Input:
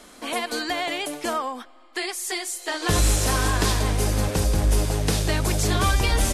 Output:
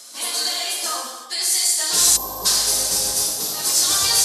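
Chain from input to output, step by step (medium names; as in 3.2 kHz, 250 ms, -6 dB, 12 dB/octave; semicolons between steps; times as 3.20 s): high-pass 950 Hz 6 dB/octave; resonant high shelf 3.5 kHz +11 dB, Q 1.5; plain phase-vocoder stretch 0.67×; time-frequency box 3.27–3.59 s, 1.4–11 kHz -9 dB; gated-style reverb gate 400 ms falling, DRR -3 dB; time-frequency box 2.17–2.46 s, 1.2–12 kHz -21 dB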